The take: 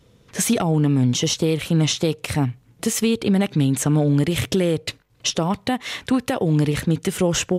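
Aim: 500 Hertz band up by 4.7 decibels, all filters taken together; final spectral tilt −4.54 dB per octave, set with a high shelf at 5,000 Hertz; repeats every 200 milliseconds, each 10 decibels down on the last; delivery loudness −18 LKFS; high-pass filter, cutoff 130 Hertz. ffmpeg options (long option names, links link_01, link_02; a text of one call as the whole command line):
ffmpeg -i in.wav -af "highpass=130,equalizer=frequency=500:width_type=o:gain=5.5,highshelf=frequency=5000:gain=5.5,aecho=1:1:200|400|600|800:0.316|0.101|0.0324|0.0104,volume=1dB" out.wav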